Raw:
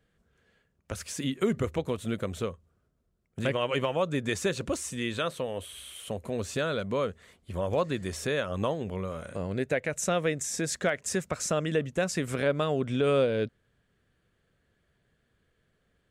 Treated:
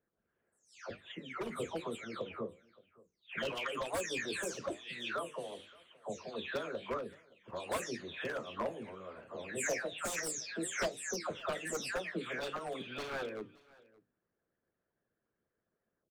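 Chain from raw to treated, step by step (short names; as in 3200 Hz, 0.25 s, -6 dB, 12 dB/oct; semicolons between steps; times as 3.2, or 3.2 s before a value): spectral delay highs early, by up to 0.427 s; HPF 230 Hz 6 dB/oct; notches 50/100/150/200/250/300/350/400/450/500 Hz; low-pass opened by the level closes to 1200 Hz, open at -27 dBFS; wavefolder -24 dBFS; harmonic-percussive split harmonic -15 dB; echo 0.571 s -23.5 dB; flange 1 Hz, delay 6.7 ms, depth 8.5 ms, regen -75%; gain +2.5 dB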